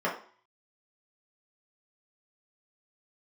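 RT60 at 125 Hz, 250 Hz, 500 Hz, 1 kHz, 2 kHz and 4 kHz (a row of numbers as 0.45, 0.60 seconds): 0.30, 0.45, 0.45, 0.50, 0.45, 0.45 seconds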